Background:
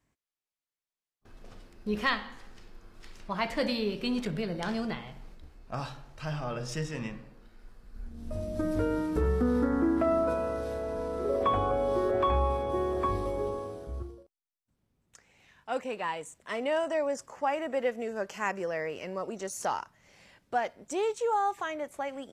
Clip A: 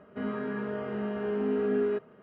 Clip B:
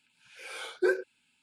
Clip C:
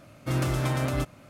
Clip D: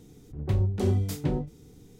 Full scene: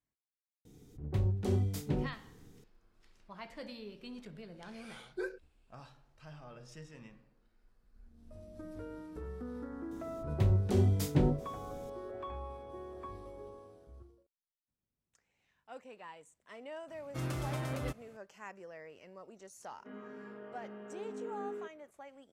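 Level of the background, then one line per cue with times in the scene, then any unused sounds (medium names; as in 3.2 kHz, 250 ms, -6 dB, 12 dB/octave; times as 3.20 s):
background -16.5 dB
0.65 s: add D -6 dB
4.35 s: add B -12.5 dB
9.91 s: add D -1.5 dB + gain riding
16.88 s: add C -10.5 dB
19.69 s: add A -14 dB + high-pass 200 Hz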